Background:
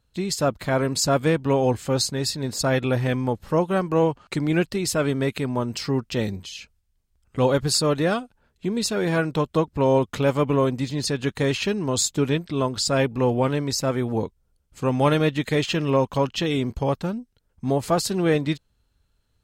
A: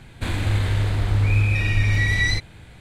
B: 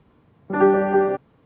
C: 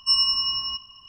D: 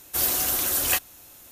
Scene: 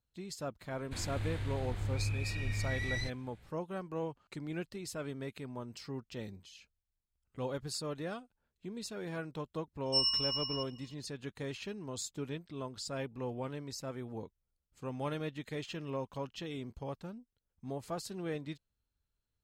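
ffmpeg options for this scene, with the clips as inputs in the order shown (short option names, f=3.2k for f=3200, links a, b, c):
-filter_complex "[0:a]volume=-18dB[a];[3:a]equalizer=f=1.1k:w=0.33:g=-6.5[b];[1:a]atrim=end=2.8,asetpts=PTS-STARTPTS,volume=-16.5dB,afade=t=in:d=0.004:c=hsin,afade=t=out:st=2.796:d=0.004:c=hsin,adelay=700[c];[b]atrim=end=1.08,asetpts=PTS-STARTPTS,volume=-8dB,afade=t=in:d=0.004:c=hsin,afade=t=out:st=1.076:d=0.004:c=hsin,adelay=434826S[d];[a][c][d]amix=inputs=3:normalize=0"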